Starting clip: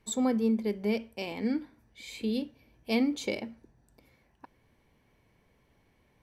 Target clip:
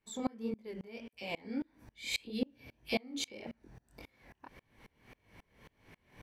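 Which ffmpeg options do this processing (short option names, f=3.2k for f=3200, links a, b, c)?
-filter_complex "[0:a]equalizer=f=2.1k:w=0.62:g=4.5,acompressor=threshold=-40dB:ratio=10,flanger=delay=19:depth=7.5:speed=1.7,asettb=1/sr,asplit=3[a][b][c];[a]atrim=end=1.094[d];[b]atrim=start=1.09:end=3.47,asetpts=PTS-STARTPTS,afade=t=in:d=0.004:c=qsin,afade=t=out:st=2.376:d=0.004:c=qsin,acrossover=split=1300[e][f];[e]adelay=40[g];[g][f]amix=inputs=2:normalize=0,atrim=end_sample=104958[h];[c]atrim=start=3.466[i];[d][h]acrossfade=d=0.004:c1=hsin:c2=qsin[j];[j][i]acrossfade=d=0.004:c1=qsin:c2=hsin,aeval=exprs='val(0)*pow(10,-31*if(lt(mod(-3.7*n/s,1),2*abs(-3.7)/1000),1-mod(-3.7*n/s,1)/(2*abs(-3.7)/1000),(mod(-3.7*n/s,1)-2*abs(-3.7)/1000)/(1-2*abs(-3.7)/1000))/20)':c=same,volume=16.5dB"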